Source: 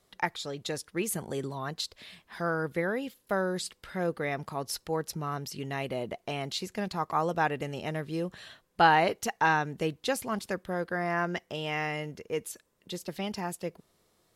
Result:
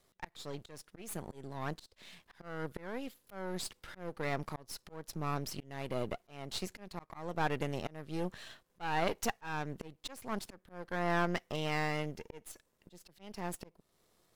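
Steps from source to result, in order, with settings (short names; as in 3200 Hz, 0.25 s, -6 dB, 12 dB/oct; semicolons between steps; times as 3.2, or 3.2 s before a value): half-wave gain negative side -12 dB; auto swell 0.406 s; gain +1 dB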